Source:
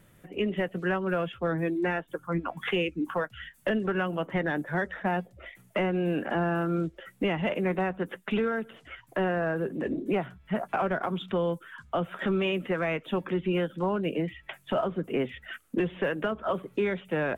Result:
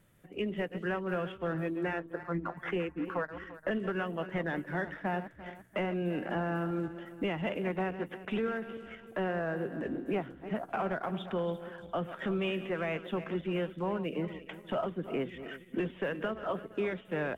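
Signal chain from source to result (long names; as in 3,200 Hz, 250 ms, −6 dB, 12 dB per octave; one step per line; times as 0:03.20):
feedback delay that plays each chunk backwards 172 ms, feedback 63%, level −12 dB
0:01.99–0:03.71: high shelf with overshoot 2,300 Hz −8 dB, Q 1.5
in parallel at −11.5 dB: slack as between gear wheels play −37.5 dBFS
on the sum: level −7.5 dB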